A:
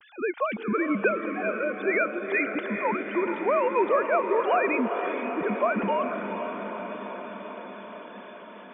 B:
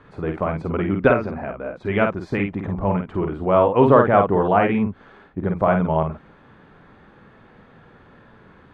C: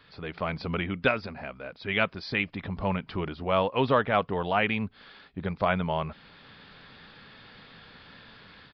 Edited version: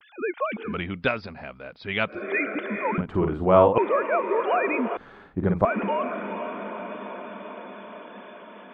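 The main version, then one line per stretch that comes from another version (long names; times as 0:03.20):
A
0:00.72–0:02.14: punch in from C, crossfade 0.16 s
0:02.98–0:03.78: punch in from B
0:04.97–0:05.65: punch in from B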